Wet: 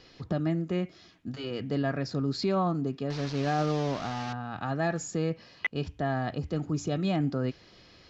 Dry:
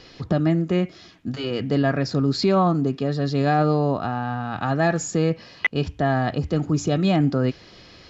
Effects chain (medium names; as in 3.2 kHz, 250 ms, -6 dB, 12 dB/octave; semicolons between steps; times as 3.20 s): 3.10–4.33 s: one-bit delta coder 32 kbps, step -24 dBFS; trim -8.5 dB